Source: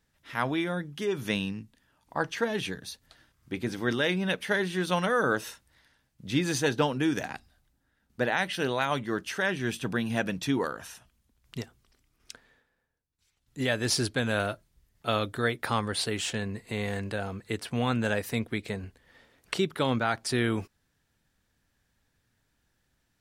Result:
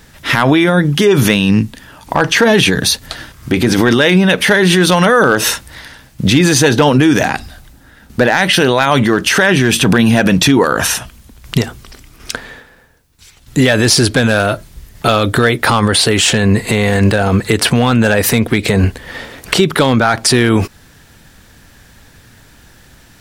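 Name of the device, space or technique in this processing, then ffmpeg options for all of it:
loud club master: -af "acompressor=threshold=0.0224:ratio=2,asoftclip=type=hard:threshold=0.0668,alimiter=level_in=37.6:limit=0.891:release=50:level=0:latency=1,volume=0.891"

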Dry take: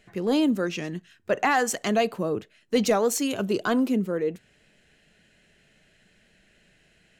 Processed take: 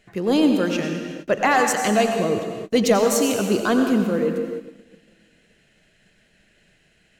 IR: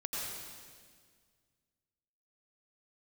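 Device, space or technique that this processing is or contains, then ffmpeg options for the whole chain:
keyed gated reverb: -filter_complex "[0:a]asplit=3[s0][s1][s2];[1:a]atrim=start_sample=2205[s3];[s1][s3]afir=irnorm=-1:irlink=0[s4];[s2]apad=whole_len=317147[s5];[s4][s5]sidechaingate=range=0.0224:threshold=0.00112:ratio=16:detection=peak,volume=0.75[s6];[s0][s6]amix=inputs=2:normalize=0"

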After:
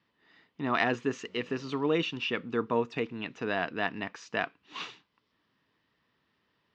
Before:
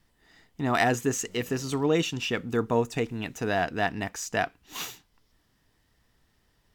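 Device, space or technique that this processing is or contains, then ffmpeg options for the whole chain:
kitchen radio: -af "highpass=170,equalizer=f=740:t=q:w=4:g=-5,equalizer=f=1100:t=q:w=4:g=5,equalizer=f=2600:t=q:w=4:g=3,lowpass=f=4300:w=0.5412,lowpass=f=4300:w=1.3066,volume=0.708"

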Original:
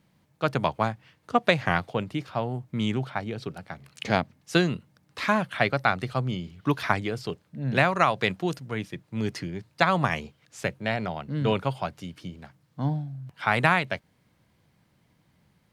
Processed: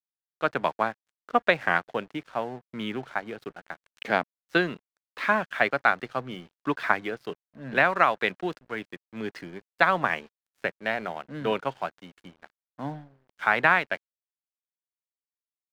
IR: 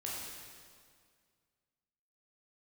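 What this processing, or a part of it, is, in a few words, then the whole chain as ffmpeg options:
pocket radio on a weak battery: -af "highpass=270,lowpass=3200,aeval=exprs='sgn(val(0))*max(abs(val(0))-0.00355,0)':c=same,equalizer=f=1600:t=o:w=0.48:g=5"

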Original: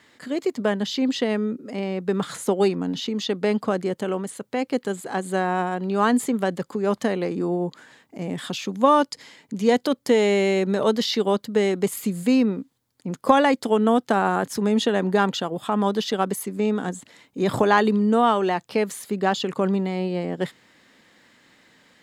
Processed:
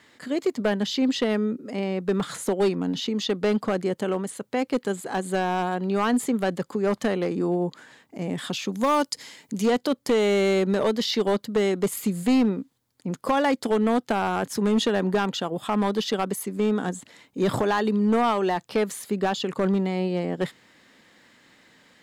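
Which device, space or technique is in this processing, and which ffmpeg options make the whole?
limiter into clipper: -filter_complex "[0:a]alimiter=limit=0.316:level=0:latency=1:release=395,asoftclip=type=hard:threshold=0.158,asettb=1/sr,asplit=3[s0][s1][s2];[s0]atrim=end=8.724[s3];[s1]atrim=start=8.72:end=9.66,asetpts=PTS-STARTPTS,afade=t=in:d=0.004:c=qsin,afade=t=out:st=0.936:d=0.004:c=qsin,highshelf=f=5300:g=10.5[s4];[s2]atrim=start=9.656[s5];[s3][s4]acrossfade=d=0.004:c1=hsin:c2=qsin[s6];[s6][s5]acrossfade=d=0.004:c1=qsin:c2=hsin"

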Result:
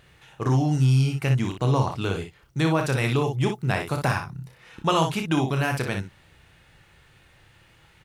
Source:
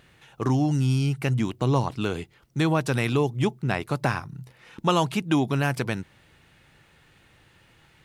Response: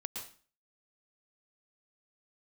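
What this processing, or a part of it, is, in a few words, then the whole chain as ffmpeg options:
low shelf boost with a cut just above: -filter_complex "[0:a]lowshelf=f=82:g=5.5,equalizer=f=250:t=o:w=0.91:g=-4.5,asettb=1/sr,asplit=3[s0][s1][s2];[s0]atrim=end=3.474[s3];[s1]atrim=start=3.47:end=4.18,asetpts=PTS-STARTPTS,afade=t=in:d=0.004:c=qsin,afade=t=out:st=0.706:d=0.004:c=qsin,highshelf=f=7800:g=7.5[s4];[s2]atrim=start=4.176[s5];[s3][s4]acrossfade=d=0.004:c1=hsin:c2=qsin[s6];[s6][s5]acrossfade=d=0.004:c1=qsin:c2=hsin,aecho=1:1:31|60:0.398|0.473"

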